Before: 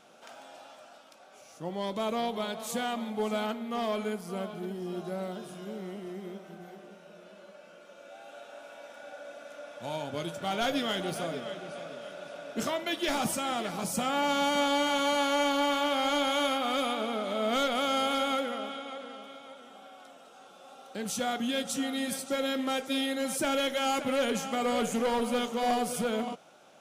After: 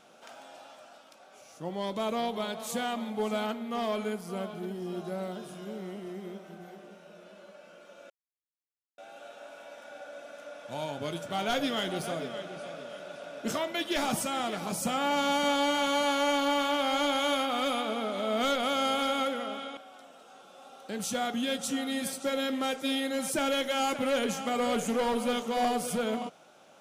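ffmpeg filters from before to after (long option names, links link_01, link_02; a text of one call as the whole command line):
ffmpeg -i in.wav -filter_complex "[0:a]asplit=3[link_01][link_02][link_03];[link_01]atrim=end=8.1,asetpts=PTS-STARTPTS,afade=type=out:start_time=8.096:duration=0.004:curve=hsin,apad=pad_dur=0.88[link_04];[link_02]atrim=start=8.1:end=18.892,asetpts=PTS-STARTPTS,afade=type=in:duration=0.004:curve=hsin[link_05];[link_03]atrim=start=19.828[link_06];[link_04][link_05]concat=n=2:v=0:a=1[link_07];[link_07][link_06]acrossfade=duration=0.004:curve1=hsin:curve2=hsin" out.wav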